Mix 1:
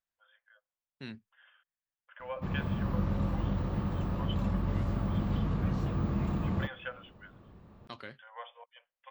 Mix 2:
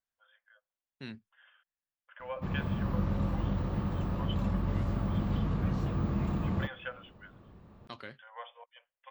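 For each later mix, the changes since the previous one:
nothing changed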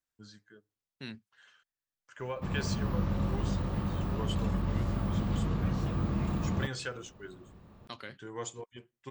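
first voice: remove linear-phase brick-wall band-pass 490–3,600 Hz
master: add high-shelf EQ 4,000 Hz +7.5 dB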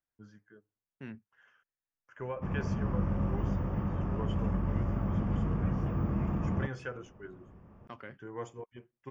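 background: add high-shelf EQ 10,000 Hz +4 dB
master: add moving average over 11 samples

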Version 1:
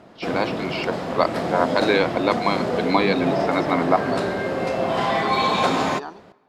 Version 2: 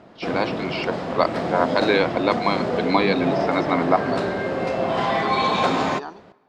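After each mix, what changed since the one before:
background: add high-frequency loss of the air 54 metres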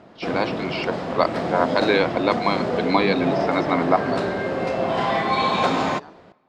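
second voice −11.0 dB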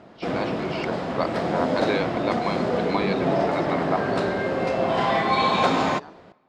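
first voice −7.0 dB

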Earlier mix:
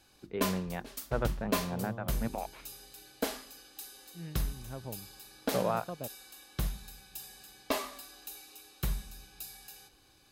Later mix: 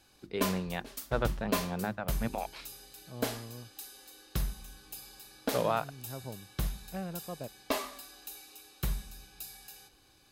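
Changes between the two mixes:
first voice: remove high-frequency loss of the air 440 metres
second voice: entry +1.40 s

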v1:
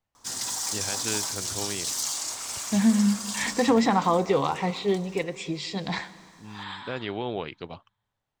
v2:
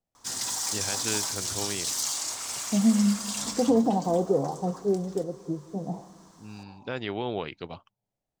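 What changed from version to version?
second voice: add elliptic band-pass filter 130–720 Hz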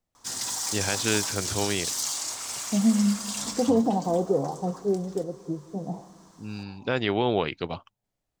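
first voice +7.0 dB

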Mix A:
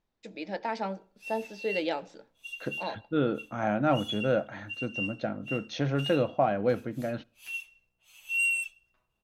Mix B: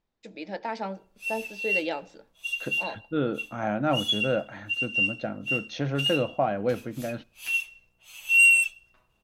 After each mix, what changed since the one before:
background +10.0 dB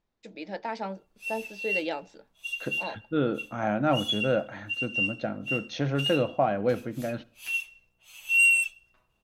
first voice: send off
second voice: send +7.5 dB
background −3.0 dB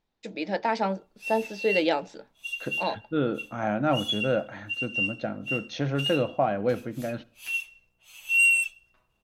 first voice +7.5 dB

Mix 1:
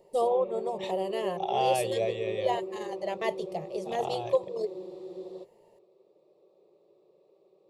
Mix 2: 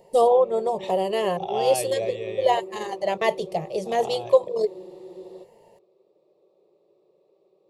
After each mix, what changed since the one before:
first voice +8.5 dB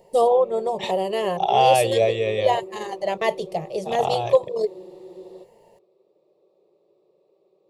second voice +10.5 dB

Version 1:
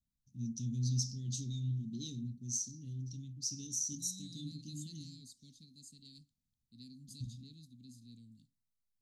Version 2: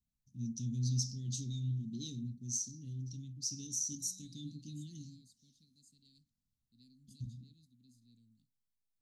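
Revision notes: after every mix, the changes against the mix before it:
second voice −10.5 dB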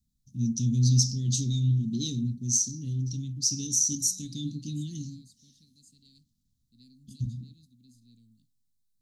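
first voice +12.0 dB
second voice +7.0 dB

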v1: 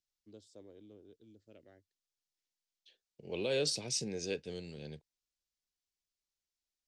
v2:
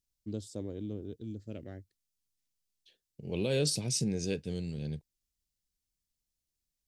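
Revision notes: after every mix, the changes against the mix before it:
first voice +11.0 dB
master: remove three-way crossover with the lows and the highs turned down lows −13 dB, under 340 Hz, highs −16 dB, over 7,500 Hz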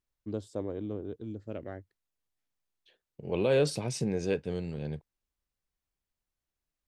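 master: add drawn EQ curve 210 Hz 0 dB, 1,100 Hz +13 dB, 5,200 Hz −7 dB

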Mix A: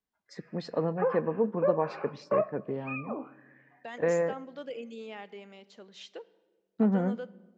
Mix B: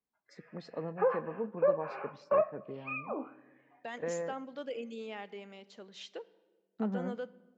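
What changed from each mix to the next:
first voice −9.5 dB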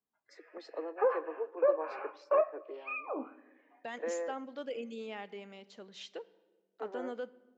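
first voice: add Butterworth high-pass 300 Hz 96 dB per octave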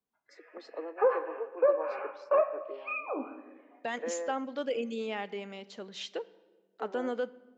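second voice +7.0 dB
background: send +11.5 dB

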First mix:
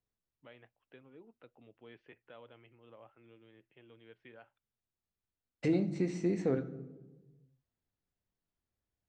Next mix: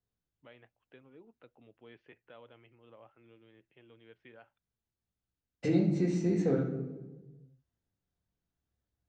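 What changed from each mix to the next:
second voice: send +9.0 dB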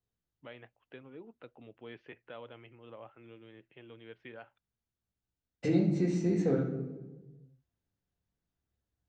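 first voice +7.0 dB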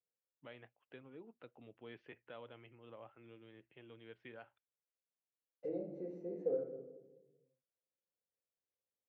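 first voice −5.0 dB
second voice: add resonant band-pass 520 Hz, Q 6.5

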